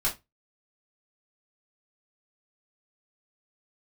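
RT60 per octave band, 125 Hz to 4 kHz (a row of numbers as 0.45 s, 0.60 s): 0.35 s, 0.20 s, 0.20 s, 0.20 s, 0.20 s, 0.20 s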